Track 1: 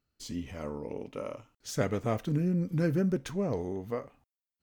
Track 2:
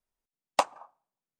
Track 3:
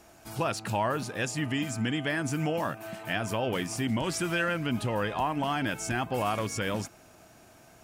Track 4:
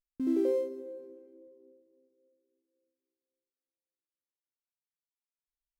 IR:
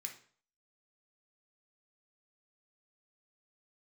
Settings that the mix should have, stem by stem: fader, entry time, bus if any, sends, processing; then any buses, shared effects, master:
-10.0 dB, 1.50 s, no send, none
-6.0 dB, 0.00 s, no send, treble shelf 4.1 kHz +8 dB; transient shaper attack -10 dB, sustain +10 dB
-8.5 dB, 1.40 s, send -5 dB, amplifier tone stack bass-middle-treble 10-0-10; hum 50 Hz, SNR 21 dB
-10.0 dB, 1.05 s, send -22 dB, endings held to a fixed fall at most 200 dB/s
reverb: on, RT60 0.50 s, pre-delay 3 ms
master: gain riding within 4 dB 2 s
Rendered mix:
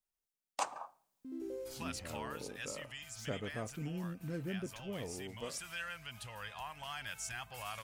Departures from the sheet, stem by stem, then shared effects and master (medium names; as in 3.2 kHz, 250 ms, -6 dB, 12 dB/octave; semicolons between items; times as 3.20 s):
stem 3: send off; stem 4 -10.0 dB -> -16.5 dB